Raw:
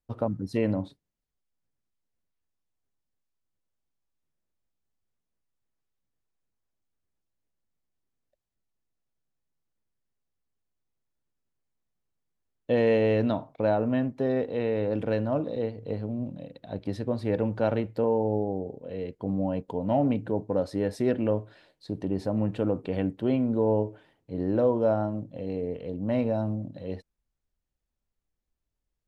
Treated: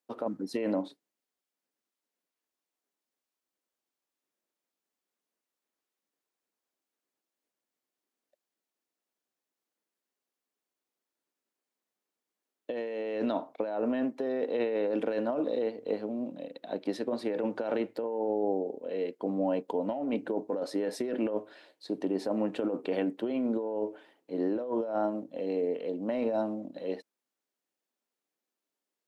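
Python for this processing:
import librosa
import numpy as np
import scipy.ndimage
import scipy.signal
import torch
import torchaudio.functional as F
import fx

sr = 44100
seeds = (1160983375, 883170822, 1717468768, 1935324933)

y = scipy.signal.sosfilt(scipy.signal.butter(4, 260.0, 'highpass', fs=sr, output='sos'), x)
y = fx.over_compress(y, sr, threshold_db=-30.0, ratio=-1.0)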